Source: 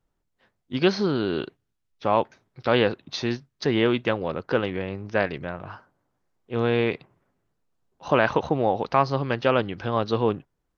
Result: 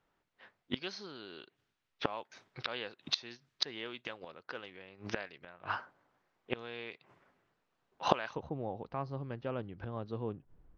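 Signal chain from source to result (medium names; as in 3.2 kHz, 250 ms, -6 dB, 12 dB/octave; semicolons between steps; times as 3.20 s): level-controlled noise filter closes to 2.4 kHz, open at -17 dBFS; tilt EQ +3.5 dB/octave, from 8.35 s -2.5 dB/octave; inverted gate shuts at -22 dBFS, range -25 dB; trim +5.5 dB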